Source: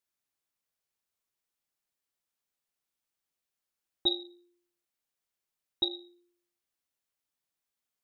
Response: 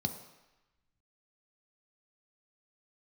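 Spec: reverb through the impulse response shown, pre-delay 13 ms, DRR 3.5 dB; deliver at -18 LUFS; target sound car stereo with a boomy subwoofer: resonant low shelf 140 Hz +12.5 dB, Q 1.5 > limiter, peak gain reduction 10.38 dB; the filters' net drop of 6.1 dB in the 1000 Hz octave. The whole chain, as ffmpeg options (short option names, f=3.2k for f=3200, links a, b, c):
-filter_complex "[0:a]equalizer=f=1k:t=o:g=-8.5,asplit=2[a][b];[1:a]atrim=start_sample=2205,adelay=13[c];[b][c]afir=irnorm=-1:irlink=0,volume=-6dB[d];[a][d]amix=inputs=2:normalize=0,lowshelf=f=140:t=q:w=1.5:g=12.5,volume=19dB,alimiter=limit=-5.5dB:level=0:latency=1"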